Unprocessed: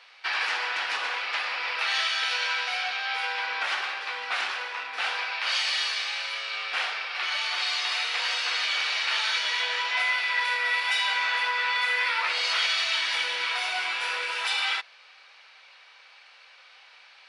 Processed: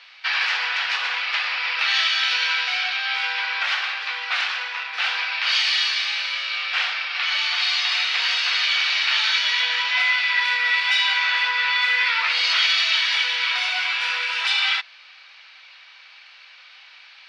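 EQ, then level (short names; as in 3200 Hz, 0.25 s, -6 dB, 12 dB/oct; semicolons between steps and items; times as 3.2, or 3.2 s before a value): air absorption 220 m; tilt +5.5 dB/oct; low shelf 180 Hz -4 dB; +2.5 dB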